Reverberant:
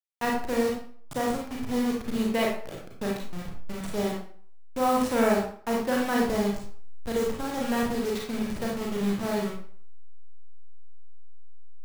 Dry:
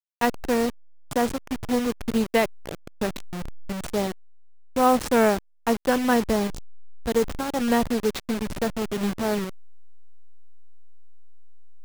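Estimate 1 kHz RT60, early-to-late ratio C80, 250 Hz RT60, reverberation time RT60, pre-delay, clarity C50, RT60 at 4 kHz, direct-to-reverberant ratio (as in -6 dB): 0.50 s, 7.5 dB, 0.45 s, 0.50 s, 31 ms, 2.0 dB, 0.40 s, -2.5 dB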